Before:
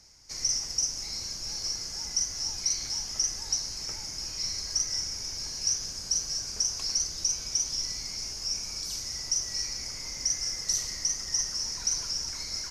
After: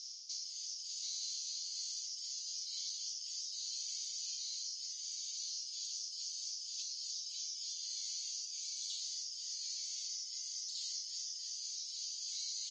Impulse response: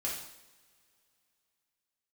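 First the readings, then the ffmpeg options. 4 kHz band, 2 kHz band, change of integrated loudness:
−9.5 dB, −19.5 dB, −10.5 dB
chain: -filter_complex "[0:a]asplit=5[link_01][link_02][link_03][link_04][link_05];[link_02]adelay=185,afreqshift=81,volume=-16dB[link_06];[link_03]adelay=370,afreqshift=162,volume=-22.7dB[link_07];[link_04]adelay=555,afreqshift=243,volume=-29.5dB[link_08];[link_05]adelay=740,afreqshift=324,volume=-36.2dB[link_09];[link_01][link_06][link_07][link_08][link_09]amix=inputs=5:normalize=0,areverse,acompressor=threshold=-39dB:ratio=10,areverse,afftfilt=real='re*lt(hypot(re,im),0.0126)':imag='im*lt(hypot(re,im),0.0126)':win_size=1024:overlap=0.75,asuperpass=centerf=4600:order=8:qfactor=1.3,volume=10dB" -ar 48000 -c:a aac -b:a 32k

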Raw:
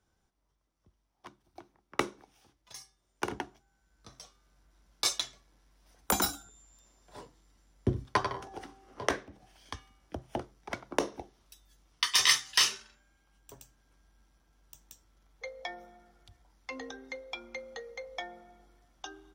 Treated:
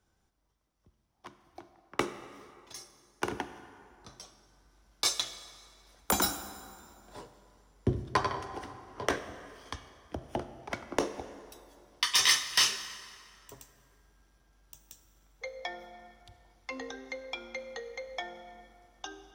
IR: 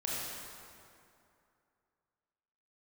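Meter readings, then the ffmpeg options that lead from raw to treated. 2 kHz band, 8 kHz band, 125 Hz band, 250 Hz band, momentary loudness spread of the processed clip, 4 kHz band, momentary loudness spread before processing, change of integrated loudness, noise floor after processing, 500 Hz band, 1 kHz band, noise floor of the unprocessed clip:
+0.5 dB, +0.5 dB, +1.0 dB, +1.0 dB, 24 LU, +0.5 dB, 22 LU, 0.0 dB, −74 dBFS, +1.0 dB, +0.5 dB, −77 dBFS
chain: -filter_complex "[0:a]asoftclip=type=tanh:threshold=-15.5dB,asplit=2[link_01][link_02];[1:a]atrim=start_sample=2205[link_03];[link_02][link_03]afir=irnorm=-1:irlink=0,volume=-13dB[link_04];[link_01][link_04]amix=inputs=2:normalize=0"

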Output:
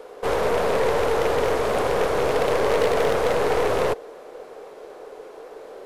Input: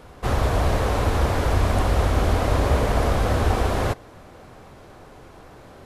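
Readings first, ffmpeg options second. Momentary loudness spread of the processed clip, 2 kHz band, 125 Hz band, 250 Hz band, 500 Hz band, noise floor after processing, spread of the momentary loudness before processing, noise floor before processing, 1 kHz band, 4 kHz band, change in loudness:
20 LU, +2.0 dB, −14.0 dB, −4.0 dB, +6.0 dB, −42 dBFS, 3 LU, −46 dBFS, +1.0 dB, +0.5 dB, 0.0 dB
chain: -af "highpass=frequency=450:width_type=q:width=4.9,aeval=exprs='0.335*(cos(1*acos(clip(val(0)/0.335,-1,1)))-cos(1*PI/2))+0.0841*(cos(4*acos(clip(val(0)/0.335,-1,1)))-cos(4*PI/2))+0.0473*(cos(5*acos(clip(val(0)/0.335,-1,1)))-cos(5*PI/2))':channel_layout=same,volume=-5dB"

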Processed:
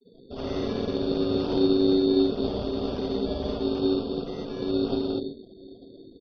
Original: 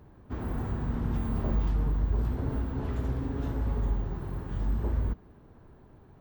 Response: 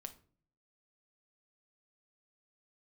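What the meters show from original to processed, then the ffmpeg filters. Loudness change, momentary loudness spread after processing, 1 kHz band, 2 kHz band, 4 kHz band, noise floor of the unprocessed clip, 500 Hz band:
+5.5 dB, 11 LU, +4.0 dB, +1.0 dB, +22.5 dB, −55 dBFS, +16.0 dB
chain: -filter_complex "[0:a]asplit=2[link_01][link_02];[1:a]atrim=start_sample=2205,adelay=58[link_03];[link_02][link_03]afir=irnorm=-1:irlink=0,volume=10dB[link_04];[link_01][link_04]amix=inputs=2:normalize=0,aeval=exprs='val(0)*sin(2*PI*330*n/s)':channel_layout=same,aecho=1:1:895:0.0841,afftfilt=real='re*gte(hypot(re,im),0.0112)':imag='im*gte(hypot(re,im),0.0112)':win_size=1024:overlap=0.75,bandreject=frequency=47.8:width_type=h:width=4,bandreject=frequency=95.6:width_type=h:width=4,bandreject=frequency=143.4:width_type=h:width=4,bandreject=frequency=191.2:width_type=h:width=4,bandreject=frequency=239:width_type=h:width=4,bandreject=frequency=286.8:width_type=h:width=4,bandreject=frequency=334.6:width_type=h:width=4,acrusher=samples=11:mix=1:aa=0.000001,volume=-1.5dB" -ar 44100 -c:a ac3 -b:a 32k

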